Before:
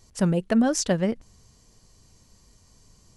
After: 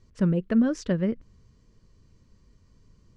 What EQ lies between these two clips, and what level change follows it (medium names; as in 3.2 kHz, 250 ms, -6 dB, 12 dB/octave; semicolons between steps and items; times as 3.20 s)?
low-pass 1.4 kHz 6 dB/octave; distance through air 52 m; peaking EQ 760 Hz -14 dB 0.54 oct; 0.0 dB